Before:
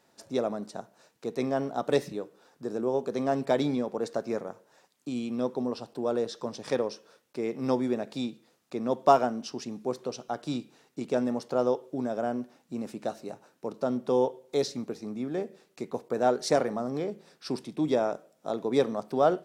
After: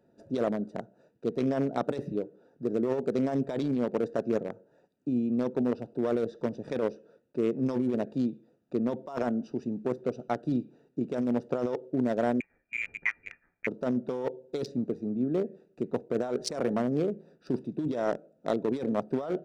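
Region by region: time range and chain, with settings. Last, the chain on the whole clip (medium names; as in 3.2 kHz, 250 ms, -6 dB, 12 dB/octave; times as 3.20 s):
12.40–13.67 s: distance through air 170 m + doubling 14 ms -8 dB + frequency inversion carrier 2.6 kHz
whole clip: local Wiener filter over 41 samples; band-stop 790 Hz, Q 12; compressor with a negative ratio -31 dBFS, ratio -1; trim +3 dB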